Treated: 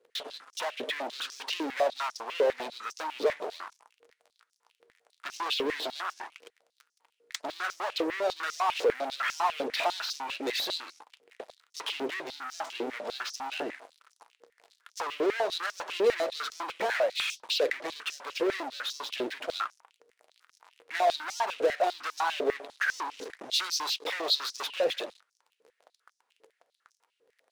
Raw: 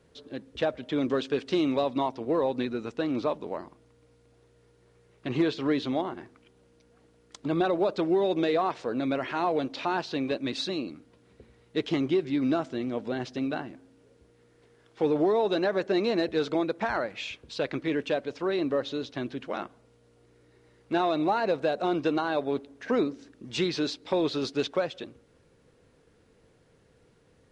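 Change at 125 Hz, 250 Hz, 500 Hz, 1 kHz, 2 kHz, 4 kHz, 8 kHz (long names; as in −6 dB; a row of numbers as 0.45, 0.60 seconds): below −20 dB, −13.5 dB, −3.5 dB, 0.0 dB, +3.0 dB, +5.0 dB, can't be measured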